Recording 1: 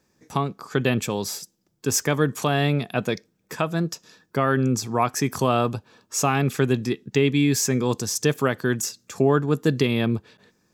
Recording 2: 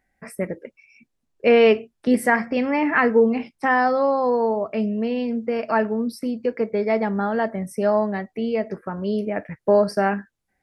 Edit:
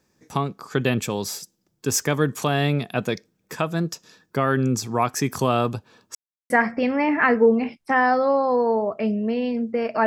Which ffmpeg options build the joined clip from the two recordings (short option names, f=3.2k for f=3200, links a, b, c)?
-filter_complex "[0:a]apad=whole_dur=10.06,atrim=end=10.06,asplit=2[a][b];[a]atrim=end=6.15,asetpts=PTS-STARTPTS,afade=t=out:st=6.146:d=0.004:c=hsin[c];[b]atrim=start=6.15:end=6.5,asetpts=PTS-STARTPTS,volume=0[d];[1:a]atrim=start=2.24:end=5.8,asetpts=PTS-STARTPTS,afade=t=in:d=0.004:c=hsin[e];[c][d][e]concat=n=3:v=0:a=1"